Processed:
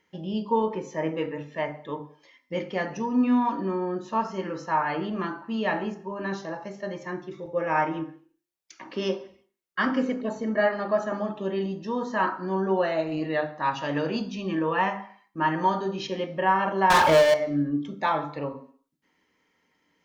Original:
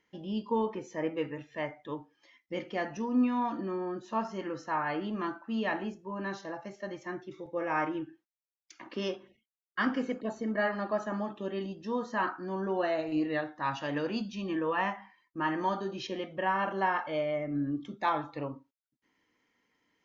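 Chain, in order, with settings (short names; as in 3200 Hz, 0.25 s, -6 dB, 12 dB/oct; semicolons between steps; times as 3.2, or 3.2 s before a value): notches 50/100/150/200/250/300/350 Hz; 16.9–17.34 sample leveller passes 5; on a send: reverb RT60 0.55 s, pre-delay 3 ms, DRR 7.5 dB; on the sum: gain +4.5 dB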